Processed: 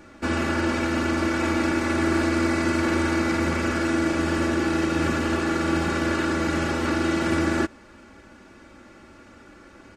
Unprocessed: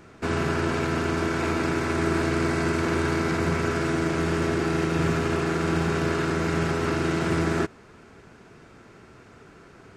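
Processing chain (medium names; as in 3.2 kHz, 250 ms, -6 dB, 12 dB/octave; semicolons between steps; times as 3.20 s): comb 3.5 ms, depth 80%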